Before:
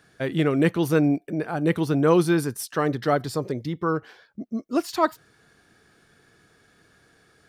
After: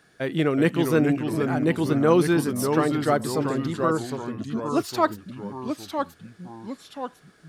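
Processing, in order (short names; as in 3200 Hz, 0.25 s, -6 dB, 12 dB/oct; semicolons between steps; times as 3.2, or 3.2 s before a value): bell 83 Hz -6.5 dB 1.2 oct; echoes that change speed 0.346 s, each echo -2 st, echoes 3, each echo -6 dB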